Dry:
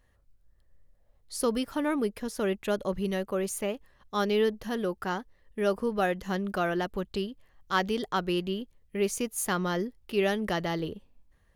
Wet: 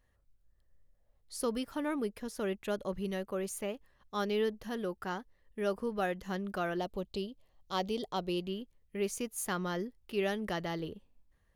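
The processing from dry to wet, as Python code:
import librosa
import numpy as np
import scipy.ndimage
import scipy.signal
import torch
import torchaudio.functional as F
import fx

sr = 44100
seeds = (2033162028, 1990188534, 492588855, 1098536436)

y = fx.graphic_eq_15(x, sr, hz=(630, 1600, 4000), db=(5, -12, 4), at=(6.77, 8.45))
y = y * librosa.db_to_amplitude(-6.0)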